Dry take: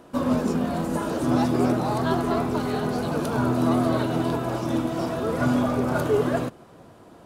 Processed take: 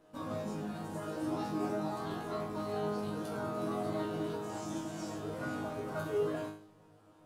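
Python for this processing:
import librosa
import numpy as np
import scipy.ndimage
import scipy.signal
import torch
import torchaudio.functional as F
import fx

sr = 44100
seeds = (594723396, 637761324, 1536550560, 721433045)

y = fx.peak_eq(x, sr, hz=7100.0, db=13.0, octaves=0.71, at=(4.42, 5.16))
y = fx.resonator_bank(y, sr, root=44, chord='fifth', decay_s=0.5)
y = F.gain(torch.from_numpy(y), 2.0).numpy()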